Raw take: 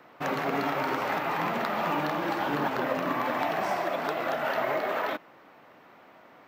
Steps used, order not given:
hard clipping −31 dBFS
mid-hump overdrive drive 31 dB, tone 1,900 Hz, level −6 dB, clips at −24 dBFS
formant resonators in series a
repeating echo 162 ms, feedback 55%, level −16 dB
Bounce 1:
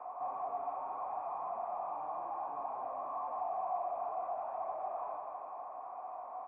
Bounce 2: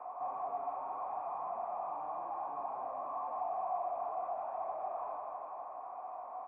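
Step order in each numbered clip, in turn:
hard clipping, then repeating echo, then mid-hump overdrive, then formant resonators in series
repeating echo, then hard clipping, then mid-hump overdrive, then formant resonators in series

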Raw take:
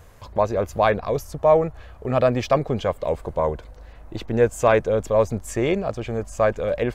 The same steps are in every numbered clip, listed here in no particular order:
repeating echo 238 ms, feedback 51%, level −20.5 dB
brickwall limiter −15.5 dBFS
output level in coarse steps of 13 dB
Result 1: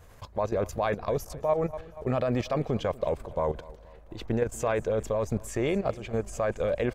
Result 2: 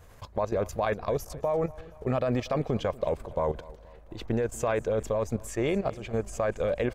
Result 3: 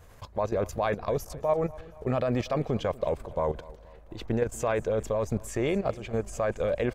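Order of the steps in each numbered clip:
output level in coarse steps, then repeating echo, then brickwall limiter
brickwall limiter, then output level in coarse steps, then repeating echo
output level in coarse steps, then brickwall limiter, then repeating echo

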